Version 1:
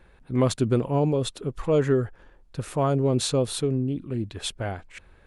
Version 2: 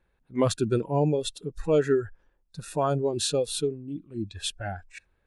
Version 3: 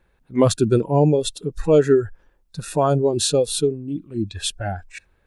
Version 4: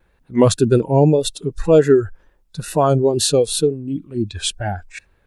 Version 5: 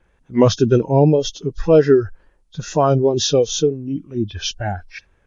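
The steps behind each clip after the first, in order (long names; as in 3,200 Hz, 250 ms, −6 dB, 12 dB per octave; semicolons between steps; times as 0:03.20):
noise reduction from a noise print of the clip's start 16 dB
dynamic equaliser 2,000 Hz, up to −5 dB, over −43 dBFS, Q 0.77; level +8 dB
tape wow and flutter 69 cents; level +3 dB
hearing-aid frequency compression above 2,700 Hz 1.5 to 1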